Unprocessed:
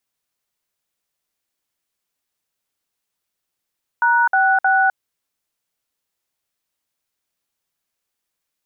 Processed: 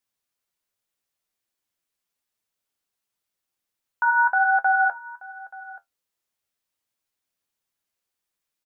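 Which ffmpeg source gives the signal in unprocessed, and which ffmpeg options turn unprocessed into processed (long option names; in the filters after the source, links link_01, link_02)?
-f lavfi -i "aevalsrc='0.178*clip(min(mod(t,0.312),0.256-mod(t,0.312))/0.002,0,1)*(eq(floor(t/0.312),0)*(sin(2*PI*941*mod(t,0.312))+sin(2*PI*1477*mod(t,0.312)))+eq(floor(t/0.312),1)*(sin(2*PI*770*mod(t,0.312))+sin(2*PI*1477*mod(t,0.312)))+eq(floor(t/0.312),2)*(sin(2*PI*770*mod(t,0.312))+sin(2*PI*1477*mod(t,0.312))))':duration=0.936:sample_rate=44100"
-af "flanger=delay=8.8:depth=2.8:regen=56:speed=1.3:shape=sinusoidal,aecho=1:1:880:0.1"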